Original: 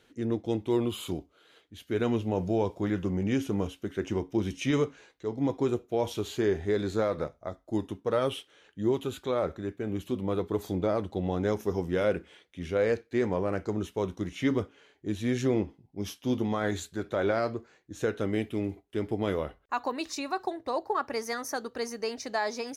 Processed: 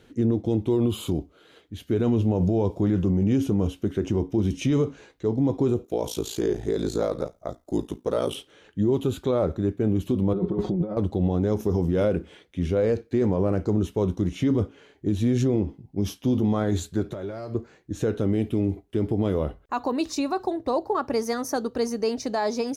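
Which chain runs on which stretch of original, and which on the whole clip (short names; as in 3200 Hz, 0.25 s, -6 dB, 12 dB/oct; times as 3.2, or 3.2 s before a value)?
5.84–8.35 tone controls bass -8 dB, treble +9 dB + ring modulator 28 Hz
10.33–10.97 comb 5.5 ms, depth 92% + negative-ratio compressor -35 dBFS + tape spacing loss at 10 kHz 31 dB
17.11–17.55 high shelf 6400 Hz +9.5 dB + compressor 8:1, threshold -38 dBFS + notch comb 250 Hz
whole clip: low shelf 450 Hz +10.5 dB; limiter -18 dBFS; dynamic EQ 1900 Hz, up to -6 dB, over -51 dBFS, Q 1.6; gain +3.5 dB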